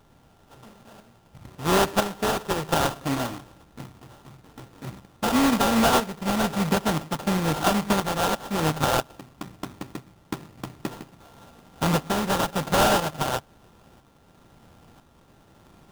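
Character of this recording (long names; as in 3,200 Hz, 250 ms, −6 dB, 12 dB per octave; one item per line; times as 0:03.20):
a buzz of ramps at a fixed pitch in blocks of 32 samples
tremolo saw up 1 Hz, depth 50%
aliases and images of a low sample rate 2,200 Hz, jitter 20%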